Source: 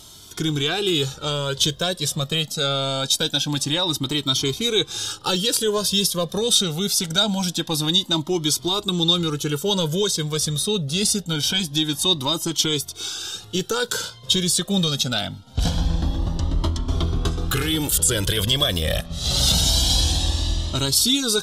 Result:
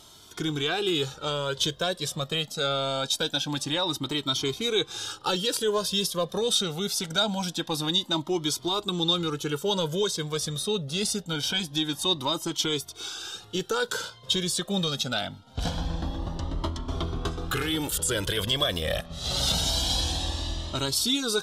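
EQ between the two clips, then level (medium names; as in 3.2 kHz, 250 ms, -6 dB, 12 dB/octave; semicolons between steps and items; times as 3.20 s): bass shelf 310 Hz -10 dB; treble shelf 2.9 kHz -10 dB; 0.0 dB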